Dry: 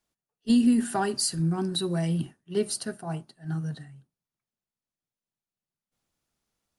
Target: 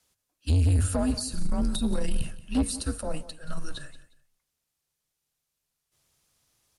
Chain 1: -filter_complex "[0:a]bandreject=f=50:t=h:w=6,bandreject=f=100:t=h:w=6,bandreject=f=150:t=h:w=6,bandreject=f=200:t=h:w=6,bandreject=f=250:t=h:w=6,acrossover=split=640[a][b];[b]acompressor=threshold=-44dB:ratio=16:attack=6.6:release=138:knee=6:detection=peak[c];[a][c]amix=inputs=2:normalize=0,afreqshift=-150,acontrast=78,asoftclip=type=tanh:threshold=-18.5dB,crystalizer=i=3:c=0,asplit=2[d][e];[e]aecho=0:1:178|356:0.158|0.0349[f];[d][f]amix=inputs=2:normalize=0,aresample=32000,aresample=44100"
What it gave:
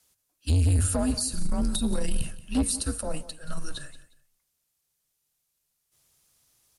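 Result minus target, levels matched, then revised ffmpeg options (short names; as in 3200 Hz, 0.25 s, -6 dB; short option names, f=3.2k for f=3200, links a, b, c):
8000 Hz band +4.5 dB
-filter_complex "[0:a]bandreject=f=50:t=h:w=6,bandreject=f=100:t=h:w=6,bandreject=f=150:t=h:w=6,bandreject=f=200:t=h:w=6,bandreject=f=250:t=h:w=6,acrossover=split=640[a][b];[b]acompressor=threshold=-44dB:ratio=16:attack=6.6:release=138:knee=6:detection=peak,highshelf=f=7.2k:g=-8.5[c];[a][c]amix=inputs=2:normalize=0,afreqshift=-150,acontrast=78,asoftclip=type=tanh:threshold=-18.5dB,crystalizer=i=3:c=0,asplit=2[d][e];[e]aecho=0:1:178|356:0.158|0.0349[f];[d][f]amix=inputs=2:normalize=0,aresample=32000,aresample=44100"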